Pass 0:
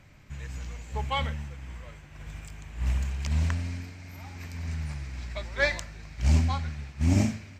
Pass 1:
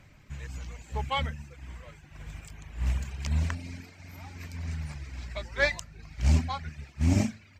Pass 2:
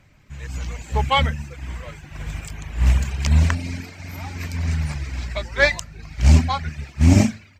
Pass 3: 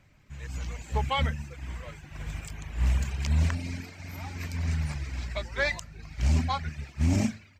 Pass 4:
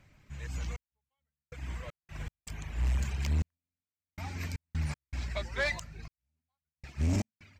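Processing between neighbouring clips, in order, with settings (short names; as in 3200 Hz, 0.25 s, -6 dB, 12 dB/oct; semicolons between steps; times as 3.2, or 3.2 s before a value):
reverb removal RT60 0.65 s
AGC gain up to 12 dB
limiter -10.5 dBFS, peak gain reduction 8.5 dB; gain -6 dB
step gate "xxxx....xx.x.x" 79 bpm -60 dB; soft clip -22 dBFS, distortion -14 dB; gain -1 dB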